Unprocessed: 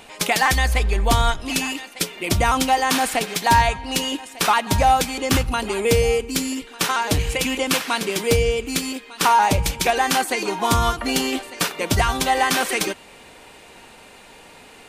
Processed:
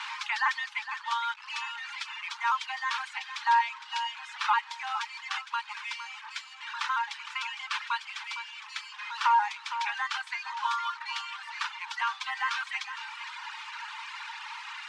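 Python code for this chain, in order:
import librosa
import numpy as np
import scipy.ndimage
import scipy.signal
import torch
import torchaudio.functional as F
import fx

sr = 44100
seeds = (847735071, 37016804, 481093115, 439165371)

p1 = fx.delta_mod(x, sr, bps=64000, step_db=-20.5)
p2 = scipy.signal.sosfilt(scipy.signal.cheby1(8, 1.0, 860.0, 'highpass', fs=sr, output='sos'), p1)
p3 = fx.high_shelf(p2, sr, hz=4600.0, db=-8.0)
p4 = fx.dereverb_blind(p3, sr, rt60_s=1.9)
p5 = fx.air_absorb(p4, sr, metres=150.0)
p6 = p5 + fx.echo_single(p5, sr, ms=460, db=-11.0, dry=0)
y = p6 * librosa.db_to_amplitude(-4.0)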